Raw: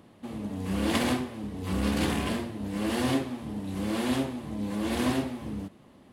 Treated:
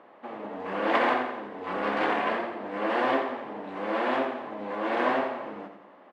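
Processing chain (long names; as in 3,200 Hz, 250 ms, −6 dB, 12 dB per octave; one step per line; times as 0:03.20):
flat-topped band-pass 980 Hz, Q 0.69
repeating echo 87 ms, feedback 50%, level −8.5 dB
level +8.5 dB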